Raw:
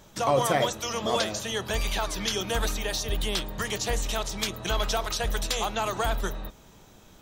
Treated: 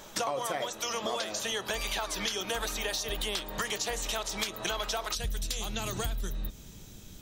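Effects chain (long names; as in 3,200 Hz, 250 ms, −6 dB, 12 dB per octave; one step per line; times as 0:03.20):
parametric band 82 Hz −15 dB 2.5 octaves, from 0:05.15 900 Hz
downward compressor 10 to 1, threshold −37 dBFS, peak gain reduction 17 dB
level +7.5 dB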